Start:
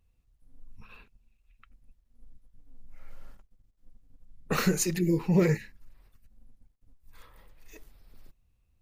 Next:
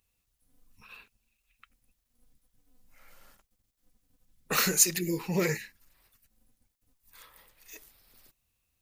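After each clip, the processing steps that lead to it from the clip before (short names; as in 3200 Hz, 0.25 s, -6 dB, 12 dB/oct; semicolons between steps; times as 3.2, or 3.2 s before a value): tilt +3 dB/oct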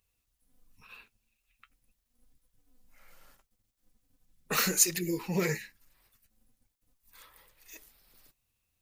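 flange 0.4 Hz, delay 1.7 ms, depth 8.2 ms, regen -56%; gain +2.5 dB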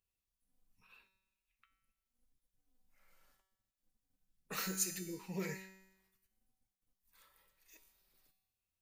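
resonator 190 Hz, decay 0.94 s, mix 80%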